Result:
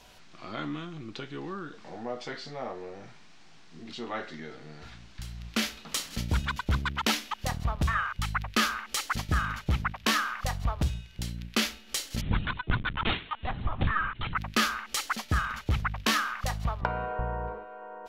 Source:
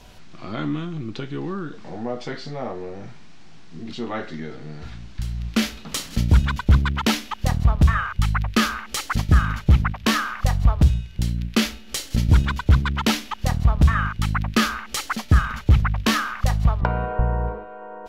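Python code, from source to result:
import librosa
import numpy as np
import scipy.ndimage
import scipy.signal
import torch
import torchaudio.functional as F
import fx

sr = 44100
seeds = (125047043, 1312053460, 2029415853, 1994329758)

y = fx.low_shelf(x, sr, hz=350.0, db=-10.0)
y = fx.lpc_vocoder(y, sr, seeds[0], excitation='pitch_kept', order=16, at=(12.21, 14.37))
y = y * librosa.db_to_amplitude(-3.5)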